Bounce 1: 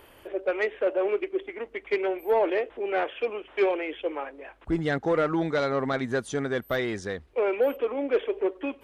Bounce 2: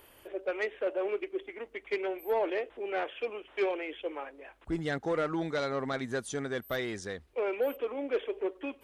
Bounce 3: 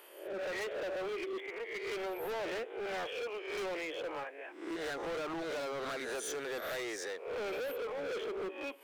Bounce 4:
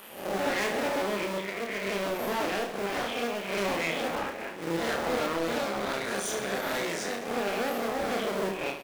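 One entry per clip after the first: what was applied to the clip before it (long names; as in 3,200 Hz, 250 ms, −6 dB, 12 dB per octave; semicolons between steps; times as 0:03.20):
high-shelf EQ 4,600 Hz +9 dB; level −6.5 dB
peak hold with a rise ahead of every peak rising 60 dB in 0.55 s; high-pass filter 350 Hz 24 dB per octave; hard clipping −36 dBFS, distortion −6 dB
sub-harmonics by changed cycles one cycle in 2, muted; speech leveller 2 s; reverse bouncing-ball delay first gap 30 ms, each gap 1.4×, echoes 5; level +8.5 dB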